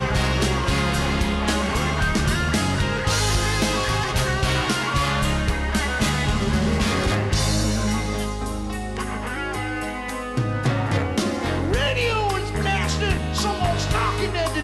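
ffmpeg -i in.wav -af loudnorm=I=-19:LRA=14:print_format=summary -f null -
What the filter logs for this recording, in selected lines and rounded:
Input Integrated:    -22.5 LUFS
Input True Peak:     -12.0 dBTP
Input LRA:             3.0 LU
Input Threshold:     -32.5 LUFS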